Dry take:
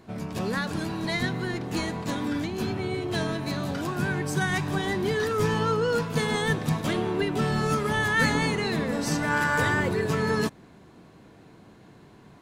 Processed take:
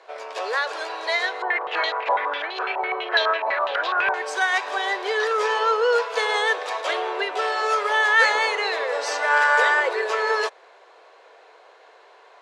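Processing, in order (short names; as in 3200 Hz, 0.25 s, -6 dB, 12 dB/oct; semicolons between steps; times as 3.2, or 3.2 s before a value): steep high-pass 460 Hz 48 dB/oct; air absorption 100 m; 1.42–4.14 stepped low-pass 12 Hz 890–3800 Hz; gain +8 dB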